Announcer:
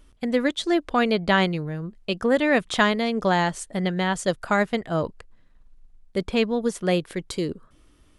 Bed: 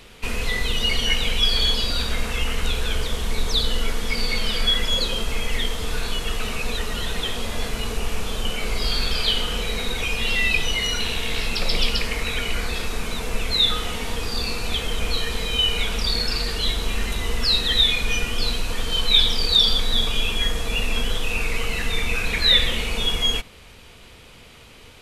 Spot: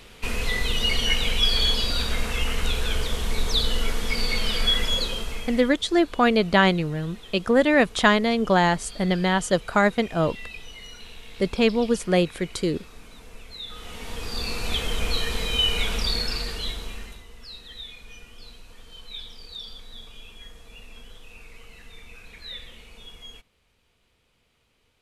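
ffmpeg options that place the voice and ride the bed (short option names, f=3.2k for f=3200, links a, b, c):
-filter_complex "[0:a]adelay=5250,volume=2dB[a];[1:a]volume=16dB,afade=t=out:st=4.83:d=0.91:silence=0.133352,afade=t=in:st=13.67:d=1.06:silence=0.133352,afade=t=out:st=15.94:d=1.31:silence=0.0944061[b];[a][b]amix=inputs=2:normalize=0"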